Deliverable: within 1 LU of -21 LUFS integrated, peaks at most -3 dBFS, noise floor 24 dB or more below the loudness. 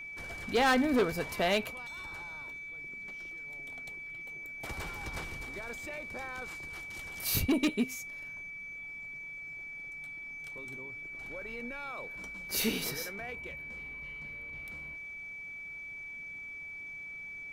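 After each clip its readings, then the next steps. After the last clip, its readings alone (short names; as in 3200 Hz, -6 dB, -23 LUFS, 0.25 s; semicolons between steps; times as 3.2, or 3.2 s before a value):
clipped 0.5%; flat tops at -22.0 dBFS; steady tone 2300 Hz; tone level -41 dBFS; loudness -36.0 LUFS; peak -22.0 dBFS; loudness target -21.0 LUFS
-> clip repair -22 dBFS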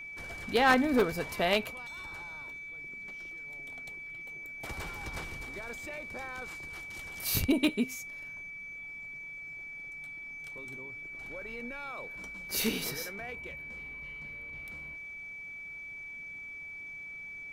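clipped 0.0%; steady tone 2300 Hz; tone level -41 dBFS
-> notch 2300 Hz, Q 30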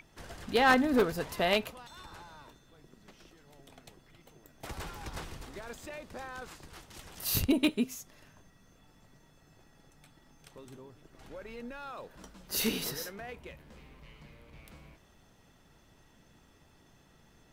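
steady tone none; loudness -32.0 LUFS; peak -12.5 dBFS; loudness target -21.0 LUFS
-> gain +11 dB; limiter -3 dBFS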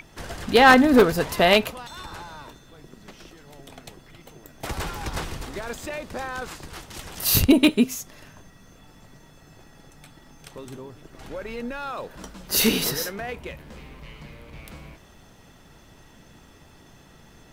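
loudness -21.5 LUFS; peak -3.0 dBFS; noise floor -52 dBFS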